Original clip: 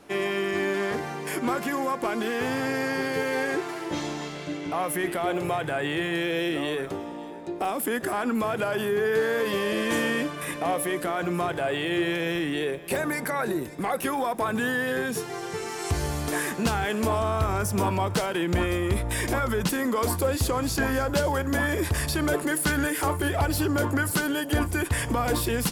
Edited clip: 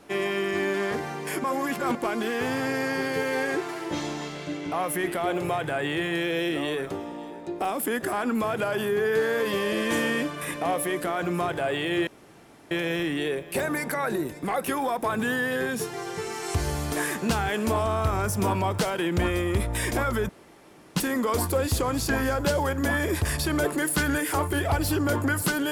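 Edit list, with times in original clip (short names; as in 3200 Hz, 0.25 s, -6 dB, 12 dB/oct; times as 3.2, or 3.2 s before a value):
1.44–1.95 reverse
12.07 insert room tone 0.64 s
19.65 insert room tone 0.67 s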